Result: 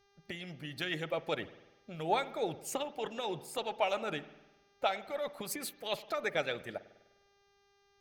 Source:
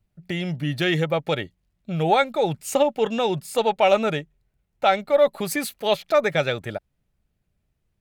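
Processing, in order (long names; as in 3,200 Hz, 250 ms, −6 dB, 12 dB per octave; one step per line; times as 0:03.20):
spring reverb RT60 1 s, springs 50 ms, chirp 75 ms, DRR 11.5 dB
harmonic and percussive parts rebalanced harmonic −12 dB
hum with harmonics 400 Hz, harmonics 16, −62 dBFS −4 dB per octave
level −8.5 dB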